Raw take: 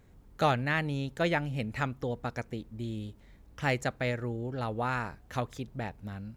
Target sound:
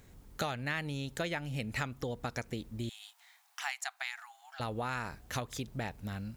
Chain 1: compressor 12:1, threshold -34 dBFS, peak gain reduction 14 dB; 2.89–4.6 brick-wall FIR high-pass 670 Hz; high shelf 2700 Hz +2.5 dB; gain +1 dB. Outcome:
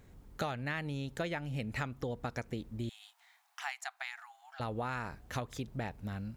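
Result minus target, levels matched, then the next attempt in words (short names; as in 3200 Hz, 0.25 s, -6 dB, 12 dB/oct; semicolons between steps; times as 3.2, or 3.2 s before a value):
4000 Hz band -3.5 dB
compressor 12:1, threshold -34 dBFS, peak gain reduction 14 dB; 2.89–4.6 brick-wall FIR high-pass 670 Hz; high shelf 2700 Hz +10 dB; gain +1 dB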